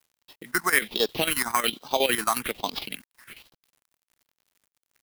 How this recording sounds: aliases and images of a low sample rate 7100 Hz, jitter 0%; phasing stages 4, 1.2 Hz, lowest notch 490–2000 Hz; a quantiser's noise floor 10-bit, dither none; chopped level 11 Hz, depth 65%, duty 65%

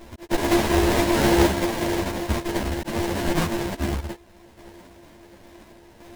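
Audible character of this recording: a buzz of ramps at a fixed pitch in blocks of 128 samples; random-step tremolo; aliases and images of a low sample rate 1300 Hz, jitter 20%; a shimmering, thickened sound

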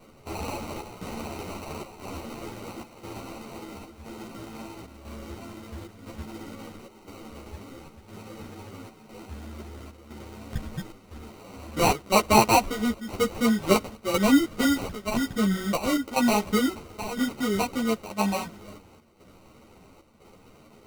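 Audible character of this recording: chopped level 0.99 Hz, depth 60%, duty 80%; aliases and images of a low sample rate 1700 Hz, jitter 0%; a shimmering, thickened sound

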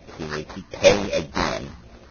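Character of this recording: phasing stages 6, 2.7 Hz, lowest notch 510–2600 Hz; aliases and images of a low sample rate 3000 Hz, jitter 20%; Vorbis

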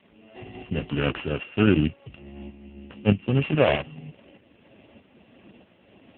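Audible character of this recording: a buzz of ramps at a fixed pitch in blocks of 16 samples; tremolo saw up 1.6 Hz, depth 65%; a quantiser's noise floor 10-bit, dither none; AMR-NB

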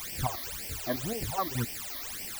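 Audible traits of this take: chopped level 5.8 Hz, depth 65%, duty 55%; a quantiser's noise floor 6-bit, dither triangular; phasing stages 12, 1.9 Hz, lowest notch 140–1300 Hz

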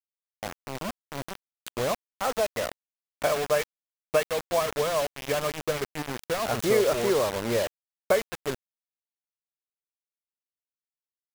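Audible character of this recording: tremolo triangle 1.1 Hz, depth 30%; a quantiser's noise floor 6-bit, dither none

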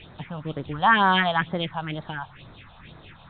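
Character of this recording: a quantiser's noise floor 8-bit, dither triangular; phasing stages 4, 2.1 Hz, lowest notch 330–2800 Hz; A-law

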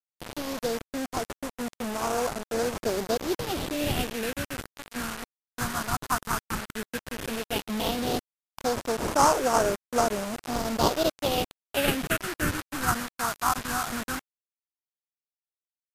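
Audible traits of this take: aliases and images of a low sample rate 2100 Hz, jitter 20%; phasing stages 4, 0.13 Hz, lowest notch 500–3300 Hz; a quantiser's noise floor 6-bit, dither none; MP3

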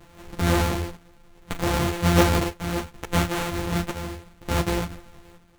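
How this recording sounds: a buzz of ramps at a fixed pitch in blocks of 256 samples; chopped level 0.68 Hz, depth 65%, duty 65%; aliases and images of a low sample rate 5100 Hz, jitter 20%; a shimmering, thickened sound

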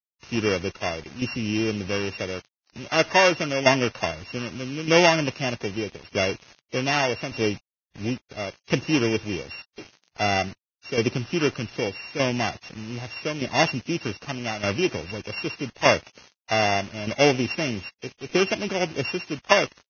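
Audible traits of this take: a buzz of ramps at a fixed pitch in blocks of 16 samples; tremolo saw down 0.82 Hz, depth 65%; a quantiser's noise floor 8-bit, dither none; Vorbis

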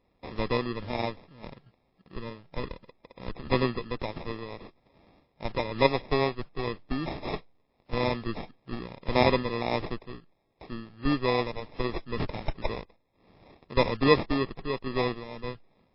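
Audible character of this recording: random-step tremolo; aliases and images of a low sample rate 1500 Hz, jitter 0%; MP3

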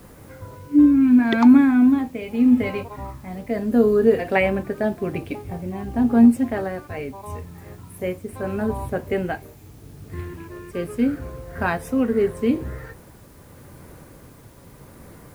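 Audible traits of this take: tremolo triangle 0.81 Hz, depth 45%; a quantiser's noise floor 10-bit, dither triangular

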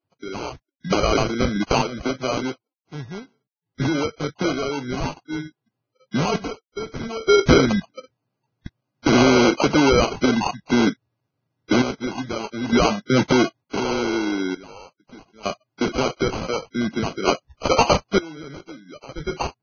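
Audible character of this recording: aliases and images of a low sample rate 1800 Hz, jitter 0%; random-step tremolo 1.1 Hz, depth 95%; Vorbis

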